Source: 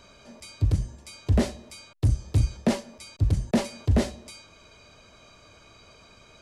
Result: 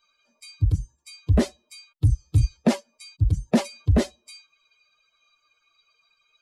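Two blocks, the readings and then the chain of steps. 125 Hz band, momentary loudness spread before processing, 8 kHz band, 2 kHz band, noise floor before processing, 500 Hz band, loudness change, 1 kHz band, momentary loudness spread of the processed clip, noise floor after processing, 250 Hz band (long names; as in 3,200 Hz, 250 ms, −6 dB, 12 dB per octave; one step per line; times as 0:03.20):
+2.0 dB, 20 LU, +0.5 dB, +1.0 dB, −54 dBFS, +2.0 dB, +2.5 dB, +1.5 dB, 10 LU, −72 dBFS, +2.5 dB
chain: spectral dynamics exaggerated over time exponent 2
level +5 dB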